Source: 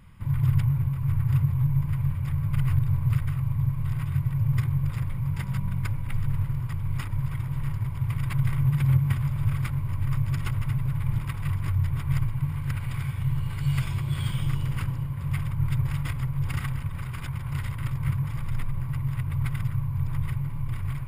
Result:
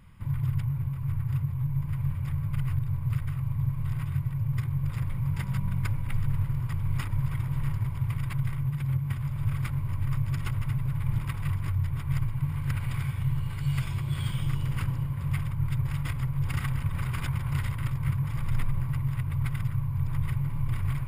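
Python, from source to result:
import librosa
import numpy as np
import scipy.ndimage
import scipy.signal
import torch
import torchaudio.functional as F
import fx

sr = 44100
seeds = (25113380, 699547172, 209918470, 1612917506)

y = fx.rider(x, sr, range_db=10, speed_s=0.5)
y = y * 10.0 ** (-2.5 / 20.0)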